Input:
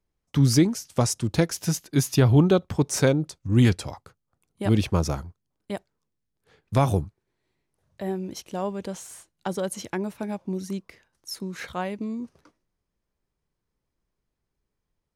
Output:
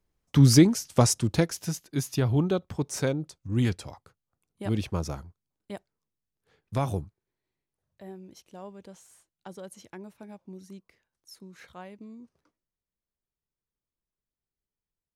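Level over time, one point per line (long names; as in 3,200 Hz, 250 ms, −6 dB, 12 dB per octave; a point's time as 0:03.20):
0:01.11 +2 dB
0:01.76 −7 dB
0:06.97 −7 dB
0:08.11 −14 dB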